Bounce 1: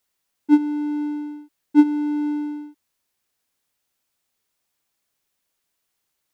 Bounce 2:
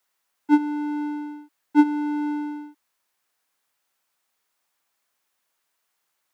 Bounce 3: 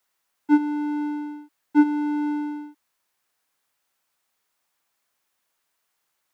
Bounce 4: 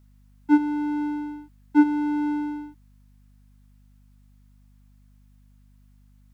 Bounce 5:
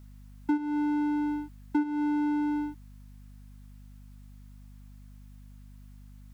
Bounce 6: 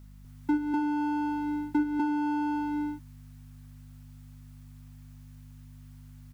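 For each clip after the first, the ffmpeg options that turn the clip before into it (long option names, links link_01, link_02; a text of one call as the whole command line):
ffmpeg -i in.wav -filter_complex "[0:a]lowshelf=frequency=180:gain=-10.5,acrossover=split=480|680|1800[link_01][link_02][link_03][link_04];[link_03]acontrast=85[link_05];[link_01][link_02][link_05][link_04]amix=inputs=4:normalize=0" out.wav
ffmpeg -i in.wav -af "lowshelf=frequency=200:gain=3.5,asoftclip=type=tanh:threshold=-6dB" out.wav
ffmpeg -i in.wav -af "aeval=exprs='val(0)+0.002*(sin(2*PI*50*n/s)+sin(2*PI*2*50*n/s)/2+sin(2*PI*3*50*n/s)/3+sin(2*PI*4*50*n/s)/4+sin(2*PI*5*50*n/s)/5)':channel_layout=same" out.wav
ffmpeg -i in.wav -af "acompressor=threshold=-31dB:ratio=8,volume=6dB" out.wav
ffmpeg -i in.wav -af "aecho=1:1:46.65|247.8:0.251|0.891" out.wav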